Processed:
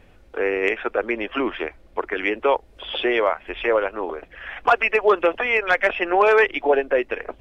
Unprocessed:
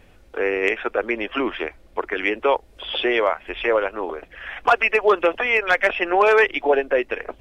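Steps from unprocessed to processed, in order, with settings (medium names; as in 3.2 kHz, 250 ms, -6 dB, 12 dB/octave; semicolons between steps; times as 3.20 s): treble shelf 4.2 kHz -6 dB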